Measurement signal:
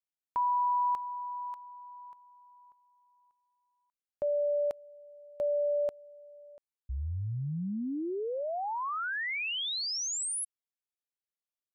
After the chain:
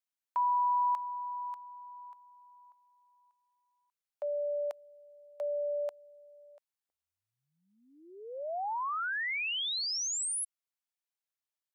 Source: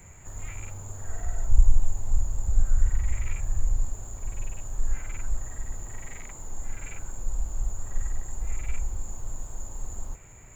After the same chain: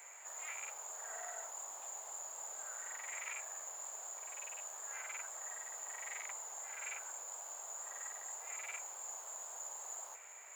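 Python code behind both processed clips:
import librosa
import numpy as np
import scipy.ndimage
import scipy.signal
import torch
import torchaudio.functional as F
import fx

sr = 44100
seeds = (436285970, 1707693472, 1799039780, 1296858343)

y = scipy.signal.sosfilt(scipy.signal.butter(4, 620.0, 'highpass', fs=sr, output='sos'), x)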